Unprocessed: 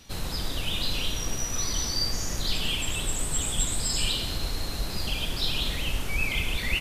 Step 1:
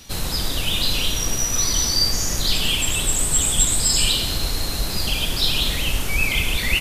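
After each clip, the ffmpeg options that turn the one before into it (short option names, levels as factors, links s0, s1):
-af "highshelf=f=5100:g=6.5,volume=2"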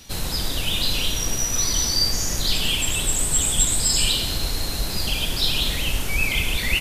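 -af "equalizer=f=1200:w=7.6:g=-2.5,volume=0.841"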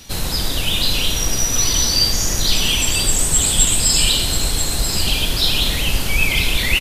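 -af "aecho=1:1:989:0.355,volume=1.68"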